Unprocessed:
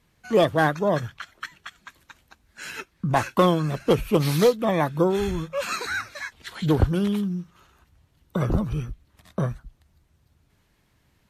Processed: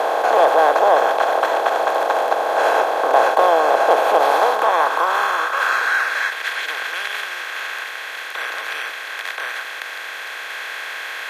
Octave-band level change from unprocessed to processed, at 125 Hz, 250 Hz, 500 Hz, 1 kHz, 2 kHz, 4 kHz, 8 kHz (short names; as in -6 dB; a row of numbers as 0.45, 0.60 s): under -35 dB, -11.5 dB, +6.5 dB, +14.0 dB, +13.5 dB, +8.0 dB, +5.0 dB